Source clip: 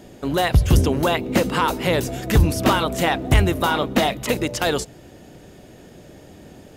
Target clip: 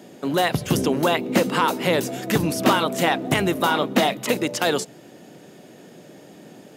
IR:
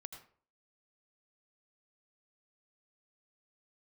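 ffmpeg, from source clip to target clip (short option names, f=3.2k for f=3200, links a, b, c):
-af "highpass=f=150:w=0.5412,highpass=f=150:w=1.3066"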